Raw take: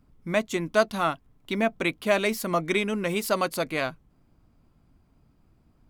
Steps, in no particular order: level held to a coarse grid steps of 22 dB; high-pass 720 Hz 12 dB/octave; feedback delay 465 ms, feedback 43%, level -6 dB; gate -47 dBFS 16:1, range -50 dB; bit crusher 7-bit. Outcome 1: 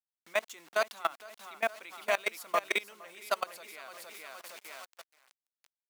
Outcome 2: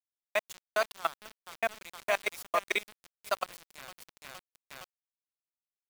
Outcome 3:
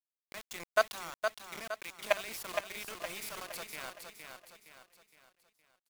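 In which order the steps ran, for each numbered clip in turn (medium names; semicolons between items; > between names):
gate > feedback delay > bit crusher > level held to a coarse grid > high-pass; feedback delay > level held to a coarse grid > high-pass > gate > bit crusher; high-pass > level held to a coarse grid > gate > bit crusher > feedback delay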